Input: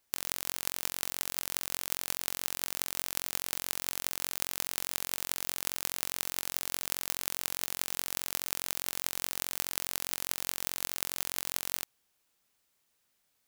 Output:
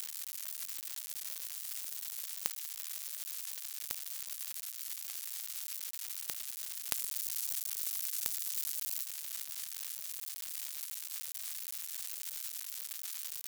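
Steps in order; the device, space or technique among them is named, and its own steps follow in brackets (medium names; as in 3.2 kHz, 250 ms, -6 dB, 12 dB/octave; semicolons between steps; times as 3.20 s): budget class-D amplifier (dead-time distortion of 0.14 ms; zero-crossing glitches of -18.5 dBFS); 6.93–9.03 s: tone controls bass +3 dB, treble +5 dB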